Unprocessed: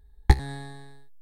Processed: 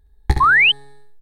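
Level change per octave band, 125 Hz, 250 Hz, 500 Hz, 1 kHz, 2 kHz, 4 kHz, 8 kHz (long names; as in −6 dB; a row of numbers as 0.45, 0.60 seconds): +0.5 dB, +1.0 dB, +1.5 dB, +17.5 dB, +25.0 dB, +23.5 dB, can't be measured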